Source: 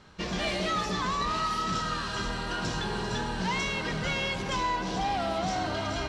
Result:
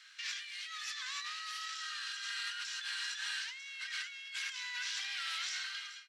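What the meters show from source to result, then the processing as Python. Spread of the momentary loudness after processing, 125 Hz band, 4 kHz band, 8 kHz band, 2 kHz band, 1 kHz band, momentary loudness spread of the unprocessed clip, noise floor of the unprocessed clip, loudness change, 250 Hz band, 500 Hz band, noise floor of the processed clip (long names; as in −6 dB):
4 LU, below −40 dB, −3.5 dB, −3.0 dB, −5.5 dB, −20.0 dB, 3 LU, −34 dBFS, −8.5 dB, below −40 dB, below −40 dB, −50 dBFS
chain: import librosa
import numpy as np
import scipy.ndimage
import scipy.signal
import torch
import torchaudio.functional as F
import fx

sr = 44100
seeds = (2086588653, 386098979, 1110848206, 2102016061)

y = fx.fade_out_tail(x, sr, length_s=0.7)
y = scipy.signal.sosfilt(scipy.signal.butter(6, 1600.0, 'highpass', fs=sr, output='sos'), y)
y = fx.over_compress(y, sr, threshold_db=-42.0, ratio=-1.0)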